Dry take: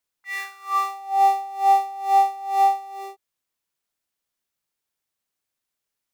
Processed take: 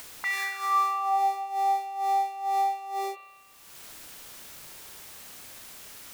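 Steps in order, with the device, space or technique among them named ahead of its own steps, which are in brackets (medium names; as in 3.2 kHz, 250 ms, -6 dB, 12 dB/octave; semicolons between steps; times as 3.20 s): upward and downward compression (upward compressor, threshold -29 dBFS; compression 3:1, threshold -34 dBFS, peak gain reduction 15 dB); spring tank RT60 1.5 s, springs 32 ms, chirp 65 ms, DRR 6.5 dB; trim +7.5 dB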